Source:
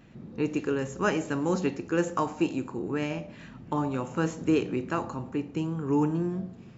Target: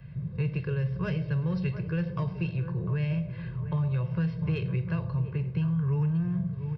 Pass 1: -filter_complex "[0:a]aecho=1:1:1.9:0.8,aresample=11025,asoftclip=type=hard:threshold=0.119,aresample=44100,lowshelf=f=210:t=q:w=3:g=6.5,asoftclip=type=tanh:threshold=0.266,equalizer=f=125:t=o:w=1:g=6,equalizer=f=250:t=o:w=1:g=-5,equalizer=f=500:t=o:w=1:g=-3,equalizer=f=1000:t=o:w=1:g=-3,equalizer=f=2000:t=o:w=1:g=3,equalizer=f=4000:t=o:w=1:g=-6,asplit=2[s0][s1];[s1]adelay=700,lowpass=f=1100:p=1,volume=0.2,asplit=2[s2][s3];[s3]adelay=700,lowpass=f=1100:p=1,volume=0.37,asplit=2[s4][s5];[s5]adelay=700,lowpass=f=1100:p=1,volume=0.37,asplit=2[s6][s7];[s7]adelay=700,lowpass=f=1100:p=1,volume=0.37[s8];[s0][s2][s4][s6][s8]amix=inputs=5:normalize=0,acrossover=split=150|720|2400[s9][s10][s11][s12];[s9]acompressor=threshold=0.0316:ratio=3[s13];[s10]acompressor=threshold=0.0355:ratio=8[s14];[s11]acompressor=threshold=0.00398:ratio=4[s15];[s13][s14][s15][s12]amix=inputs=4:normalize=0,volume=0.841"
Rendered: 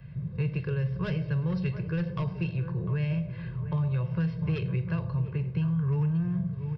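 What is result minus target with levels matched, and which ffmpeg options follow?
hard clipper: distortion +38 dB
-filter_complex "[0:a]aecho=1:1:1.9:0.8,aresample=11025,asoftclip=type=hard:threshold=0.282,aresample=44100,lowshelf=f=210:t=q:w=3:g=6.5,asoftclip=type=tanh:threshold=0.266,equalizer=f=125:t=o:w=1:g=6,equalizer=f=250:t=o:w=1:g=-5,equalizer=f=500:t=o:w=1:g=-3,equalizer=f=1000:t=o:w=1:g=-3,equalizer=f=2000:t=o:w=1:g=3,equalizer=f=4000:t=o:w=1:g=-6,asplit=2[s0][s1];[s1]adelay=700,lowpass=f=1100:p=1,volume=0.2,asplit=2[s2][s3];[s3]adelay=700,lowpass=f=1100:p=1,volume=0.37,asplit=2[s4][s5];[s5]adelay=700,lowpass=f=1100:p=1,volume=0.37,asplit=2[s6][s7];[s7]adelay=700,lowpass=f=1100:p=1,volume=0.37[s8];[s0][s2][s4][s6][s8]amix=inputs=5:normalize=0,acrossover=split=150|720|2400[s9][s10][s11][s12];[s9]acompressor=threshold=0.0316:ratio=3[s13];[s10]acompressor=threshold=0.0355:ratio=8[s14];[s11]acompressor=threshold=0.00398:ratio=4[s15];[s13][s14][s15][s12]amix=inputs=4:normalize=0,volume=0.841"

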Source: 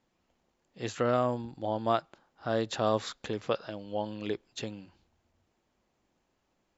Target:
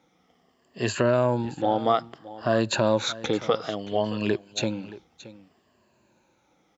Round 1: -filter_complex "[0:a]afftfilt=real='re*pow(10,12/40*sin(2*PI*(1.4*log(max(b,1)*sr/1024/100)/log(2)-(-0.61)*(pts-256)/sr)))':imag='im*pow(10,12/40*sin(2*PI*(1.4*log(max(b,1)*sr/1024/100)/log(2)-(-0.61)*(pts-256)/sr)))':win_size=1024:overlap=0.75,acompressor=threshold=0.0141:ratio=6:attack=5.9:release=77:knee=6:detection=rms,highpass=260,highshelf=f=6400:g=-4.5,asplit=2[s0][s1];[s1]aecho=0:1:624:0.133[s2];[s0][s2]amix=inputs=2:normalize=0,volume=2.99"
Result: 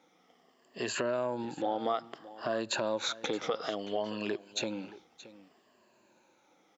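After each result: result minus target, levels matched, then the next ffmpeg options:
compression: peak gain reduction +9.5 dB; 125 Hz band -9.5 dB
-filter_complex "[0:a]afftfilt=real='re*pow(10,12/40*sin(2*PI*(1.4*log(max(b,1)*sr/1024/100)/log(2)-(-0.61)*(pts-256)/sr)))':imag='im*pow(10,12/40*sin(2*PI*(1.4*log(max(b,1)*sr/1024/100)/log(2)-(-0.61)*(pts-256)/sr)))':win_size=1024:overlap=0.75,acompressor=threshold=0.0531:ratio=6:attack=5.9:release=77:knee=6:detection=rms,highpass=260,highshelf=f=6400:g=-4.5,asplit=2[s0][s1];[s1]aecho=0:1:624:0.133[s2];[s0][s2]amix=inputs=2:normalize=0,volume=2.99"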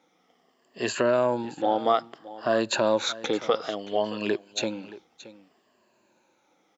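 125 Hz band -10.5 dB
-filter_complex "[0:a]afftfilt=real='re*pow(10,12/40*sin(2*PI*(1.4*log(max(b,1)*sr/1024/100)/log(2)-(-0.61)*(pts-256)/sr)))':imag='im*pow(10,12/40*sin(2*PI*(1.4*log(max(b,1)*sr/1024/100)/log(2)-(-0.61)*(pts-256)/sr)))':win_size=1024:overlap=0.75,acompressor=threshold=0.0531:ratio=6:attack=5.9:release=77:knee=6:detection=rms,highpass=97,highshelf=f=6400:g=-4.5,asplit=2[s0][s1];[s1]aecho=0:1:624:0.133[s2];[s0][s2]amix=inputs=2:normalize=0,volume=2.99"

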